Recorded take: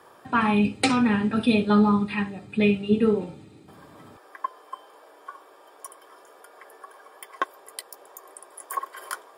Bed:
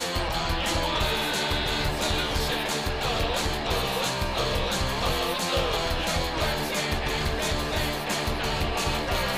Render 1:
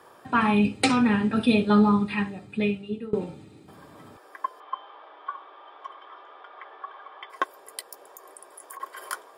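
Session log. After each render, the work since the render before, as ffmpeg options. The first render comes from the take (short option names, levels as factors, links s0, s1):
-filter_complex "[0:a]asettb=1/sr,asplit=3[s0][s1][s2];[s0]atrim=end=4.604[s3];[s1]atrim=start=4.6:end=7.3,asetpts=PTS-STARTPTS,afade=t=in:d=0.004:c=qsin,afade=t=out:st=2.696:d=0.004:c=qsin,highpass=f=290:w=0.5412,highpass=f=290:w=1.3066,equalizer=f=470:t=q:w=4:g=-4,equalizer=f=830:t=q:w=4:g=5,equalizer=f=1200:t=q:w=4:g=8,equalizer=f=2100:t=q:w=4:g=4,equalizer=f=3400:t=q:w=4:g=9,lowpass=f=3500:w=0.5412,lowpass=f=3500:w=1.3066[s4];[s2]atrim=start=7.296[s5];[s3][s4]acrossfade=d=0.004:c1=hsin:c2=qsin[s6];[s6][s5]acrossfade=d=0.004:c1=qsin:c2=hsin,asettb=1/sr,asplit=3[s7][s8][s9];[s7]atrim=end=8.054[s10];[s8]atrim=start=8.05:end=8.8,asetpts=PTS-STARTPTS,afade=t=in:d=0.004:c=qsin,afade=t=out:st=0.746:d=0.004:c=qsin,acompressor=threshold=0.0126:ratio=6:attack=3.2:release=140:knee=1:detection=peak[s11];[s9]atrim=start=8.796[s12];[s10][s11]acrossfade=d=0.004:c1=hsin:c2=qsin[s13];[s13][s12]acrossfade=d=0.004:c1=qsin:c2=hsin,asplit=2[s14][s15];[s14]atrim=end=3.13,asetpts=PTS-STARTPTS,afade=t=out:st=2.26:d=0.87:silence=0.0749894[s16];[s15]atrim=start=3.13,asetpts=PTS-STARTPTS,afade=t=in:d=0.004:c=hsin:silence=0.0749894[s17];[s16][s17]concat=n=2:v=0:a=1"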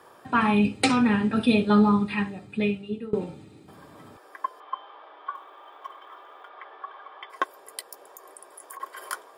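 -filter_complex "[0:a]asettb=1/sr,asplit=3[s0][s1][s2];[s0]atrim=end=5.354[s3];[s1]atrim=start=5.35:end=6.49,asetpts=PTS-STARTPTS,afade=t=in:d=0.004:c=qsin,afade=t=out:st=1.136:d=0.004:c=qsin,acrusher=bits=8:mode=log:mix=0:aa=0.000001[s4];[s2]atrim=start=6.486[s5];[s3][s4]acrossfade=d=0.004:c1=hsin:c2=qsin[s6];[s6][s5]acrossfade=d=0.004:c1=qsin:c2=hsin"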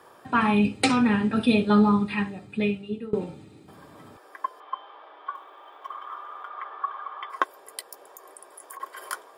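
-filter_complex "[0:a]asettb=1/sr,asplit=3[s0][s1][s2];[s0]atrim=end=5.904[s3];[s1]atrim=start=5.9:end=7.42,asetpts=PTS-STARTPTS,afade=t=in:d=0.004:c=qsin,afade=t=out:st=1.516:d=0.004:c=qsin,equalizer=f=1200:t=o:w=0.59:g=11[s4];[s2]atrim=start=7.416[s5];[s3][s4]acrossfade=d=0.004:c1=hsin:c2=qsin[s6];[s6][s5]acrossfade=d=0.004:c1=qsin:c2=hsin"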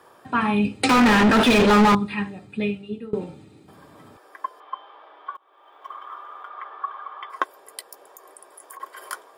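-filter_complex "[0:a]asettb=1/sr,asplit=3[s0][s1][s2];[s0]atrim=end=0.894[s3];[s1]atrim=start=0.89:end=1.95,asetpts=PTS-STARTPTS,afade=t=in:d=0.004:c=qsin,afade=t=out:st=1.056:d=0.004:c=qsin,asplit=2[s4][s5];[s5]highpass=f=720:p=1,volume=89.1,asoftclip=type=tanh:threshold=0.376[s6];[s4][s6]amix=inputs=2:normalize=0,lowpass=f=2000:p=1,volume=0.501[s7];[s2]atrim=start=1.946[s8];[s3][s7]acrossfade=d=0.004:c1=hsin:c2=qsin[s9];[s9][s8]acrossfade=d=0.004:c1=qsin:c2=hsin,asplit=2[s10][s11];[s10]atrim=end=5.37,asetpts=PTS-STARTPTS,afade=t=out:st=5.366:d=0.004:c=hsin:silence=0.0749894[s12];[s11]atrim=start=5.37,asetpts=PTS-STARTPTS,afade=t=in:d=0.54:silence=0.0749894[s13];[s12][s13]concat=n=2:v=0:a=1"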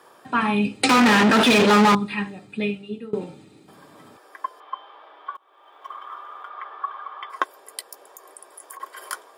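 -af "highpass=140,equalizer=f=6400:t=o:w=2.8:g=3.5"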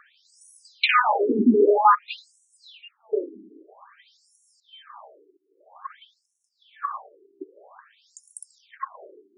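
-filter_complex "[0:a]asplit=2[s0][s1];[s1]asoftclip=type=tanh:threshold=0.224,volume=0.631[s2];[s0][s2]amix=inputs=2:normalize=0,afftfilt=real='re*between(b*sr/1024,290*pow(7900/290,0.5+0.5*sin(2*PI*0.51*pts/sr))/1.41,290*pow(7900/290,0.5+0.5*sin(2*PI*0.51*pts/sr))*1.41)':imag='im*between(b*sr/1024,290*pow(7900/290,0.5+0.5*sin(2*PI*0.51*pts/sr))/1.41,290*pow(7900/290,0.5+0.5*sin(2*PI*0.51*pts/sr))*1.41)':win_size=1024:overlap=0.75"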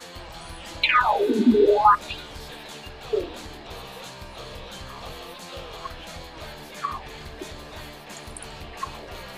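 -filter_complex "[1:a]volume=0.237[s0];[0:a][s0]amix=inputs=2:normalize=0"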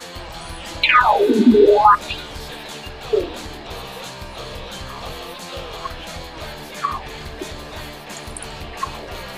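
-af "volume=2.11,alimiter=limit=0.708:level=0:latency=1"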